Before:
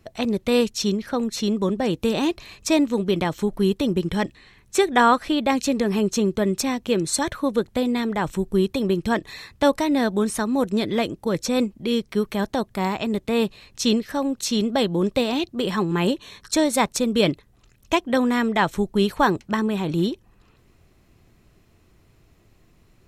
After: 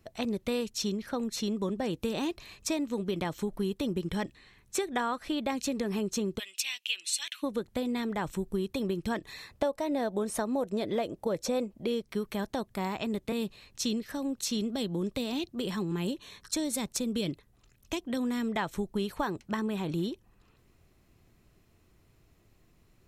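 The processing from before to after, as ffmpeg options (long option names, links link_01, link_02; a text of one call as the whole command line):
ffmpeg -i in.wav -filter_complex "[0:a]asplit=3[link_01][link_02][link_03];[link_01]afade=type=out:start_time=6.38:duration=0.02[link_04];[link_02]highpass=frequency=2800:width_type=q:width=6.1,afade=type=in:start_time=6.38:duration=0.02,afade=type=out:start_time=7.42:duration=0.02[link_05];[link_03]afade=type=in:start_time=7.42:duration=0.02[link_06];[link_04][link_05][link_06]amix=inputs=3:normalize=0,asettb=1/sr,asplit=3[link_07][link_08][link_09];[link_07]atrim=end=9.494[link_10];[link_08]atrim=start=9.49:end=12.02,asetpts=PTS-STARTPTS,afade=type=in:duration=0.004:curve=qsin,afade=type=out:start_time=2.526:duration=0.004:curve=qsin,equalizer=frequency=610:width_type=o:width=1.1:gain=10[link_11];[link_09]atrim=start=12.016[link_12];[link_10][link_11]acrossfade=duration=0.004:curve1=hsin:curve2=qsin[link_13];[link_13][link_12]acrossfade=duration=0.004:curve1=qsin:curve2=hsin,asettb=1/sr,asplit=3[link_14][link_15][link_16];[link_14]atrim=end=13.324[link_17];[link_15]atrim=start=13.32:end=18.56,asetpts=PTS-STARTPTS,afade=type=in:duration=0.004:curve=qsin,afade=type=out:start_time=5.236:duration=0.004:curve=qsin,acrossover=split=390|3000[link_18][link_19][link_20];[link_19]acompressor=threshold=-31dB:ratio=6:attack=3.2:release=140:knee=2.83:detection=peak[link_21];[link_18][link_21][link_20]amix=inputs=3:normalize=0[link_22];[link_16]atrim=start=18.556[link_23];[link_17][link_22]acrossfade=duration=0.004:curve1=hsin:curve2=qsin[link_24];[link_24][link_23]acrossfade=duration=0.004:curve1=qsin:curve2=hsin,highshelf=frequency=9200:gain=4.5,acompressor=threshold=-20dB:ratio=6,volume=-7dB" out.wav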